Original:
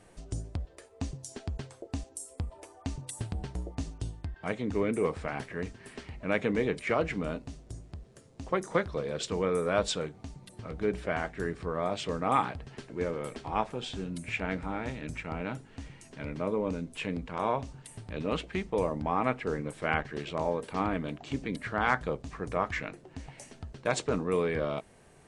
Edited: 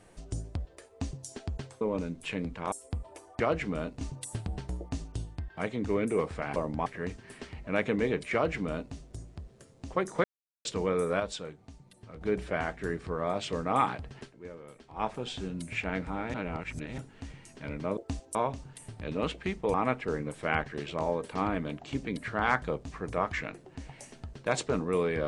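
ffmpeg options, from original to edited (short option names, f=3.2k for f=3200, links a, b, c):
-filter_complex "[0:a]asplit=18[a][b][c][d][e][f][g][h][i][j][k][l][m][n][o][p][q][r];[a]atrim=end=1.812[s];[b]atrim=start=16.528:end=17.442[t];[c]atrim=start=2.188:end=2.872[u];[d]atrim=start=6.888:end=7.502[v];[e]atrim=start=2.868:end=5.422[w];[f]atrim=start=18.828:end=19.132[x];[g]atrim=start=5.418:end=8.8,asetpts=PTS-STARTPTS,afade=t=out:st=3.378:d=0.004:c=hsin[y];[h]atrim=start=8.8:end=9.21,asetpts=PTS-STARTPTS,volume=0[z];[i]atrim=start=9.21:end=9.762,asetpts=PTS-STARTPTS,afade=t=in:d=0.004:c=hsin[aa];[j]atrim=start=9.758:end=10.772,asetpts=PTS-STARTPTS,volume=-7dB[ab];[k]atrim=start=10.768:end=12.9,asetpts=PTS-STARTPTS,afade=t=out:st=1.982:d=0.15:silence=0.237137[ac];[l]atrim=start=12.9:end=13.49,asetpts=PTS-STARTPTS,volume=-12.5dB[ad];[m]atrim=start=13.49:end=14.902,asetpts=PTS-STARTPTS,afade=t=in:d=0.15:silence=0.237137[ae];[n]atrim=start=14.898:end=15.542,asetpts=PTS-STARTPTS,areverse[af];[o]atrim=start=15.538:end=16.532[ag];[p]atrim=start=1.808:end=2.192[ah];[q]atrim=start=17.438:end=18.832[ai];[r]atrim=start=19.128[aj];[s][t]acrossfade=d=0.004:c1=hsin:c2=hsin[ak];[ak][u]acrossfade=d=0.004:c1=hsin:c2=hsin[al];[al][v]acrossfade=d=0.004:c1=hsin:c2=hsin[am];[am][w]acrossfade=d=0.004:c1=hsin:c2=hsin[an];[an][x]acrossfade=d=0.004:c1=hsin:c2=hsin[ao];[y][z][aa]concat=n=3:v=0:a=1[ap];[ao][ap]acrossfade=d=0.004:c1=hsin:c2=hsin[aq];[aq][ab]acrossfade=d=0.004:c1=hsin:c2=hsin[ar];[ac][ad][ae]concat=n=3:v=0:a=1[as];[ar][as]acrossfade=d=0.004:c1=hsin:c2=hsin[at];[at][af]acrossfade=d=0.004:c1=hsin:c2=hsin[au];[au][ag]acrossfade=d=0.004:c1=hsin:c2=hsin[av];[av][ah]acrossfade=d=0.004:c1=hsin:c2=hsin[aw];[aw][ai]acrossfade=d=0.004:c1=hsin:c2=hsin[ax];[ax][aj]acrossfade=d=0.004:c1=hsin:c2=hsin"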